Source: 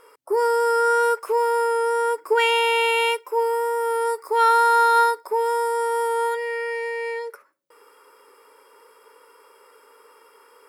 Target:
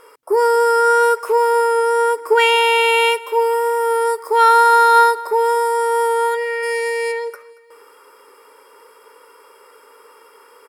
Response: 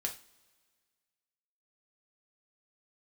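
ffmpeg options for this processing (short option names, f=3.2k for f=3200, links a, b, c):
-filter_complex "[0:a]asplit=3[a][b][c];[a]afade=t=out:st=6.62:d=0.02[d];[b]bass=f=250:g=14,treble=f=4k:g=13,afade=t=in:st=6.62:d=0.02,afade=t=out:st=7.11:d=0.02[e];[c]afade=t=in:st=7.11:d=0.02[f];[d][e][f]amix=inputs=3:normalize=0,aecho=1:1:230|460|690:0.0841|0.0395|0.0186,volume=5.5dB"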